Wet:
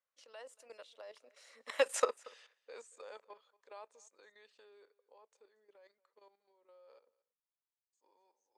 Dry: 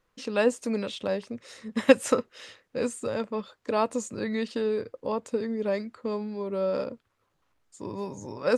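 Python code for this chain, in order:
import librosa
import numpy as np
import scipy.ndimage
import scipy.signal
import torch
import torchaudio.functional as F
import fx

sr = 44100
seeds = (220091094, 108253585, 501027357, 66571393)

y = fx.doppler_pass(x, sr, speed_mps=19, closest_m=5.4, pass_at_s=1.92)
y = scipy.signal.sosfilt(scipy.signal.butter(4, 520.0, 'highpass', fs=sr, output='sos'), y)
y = fx.level_steps(y, sr, step_db=12)
y = y + 10.0 ** (-23.0 / 20.0) * np.pad(y, (int(232 * sr / 1000.0), 0))[:len(y)]
y = y * librosa.db_to_amplitude(-1.0)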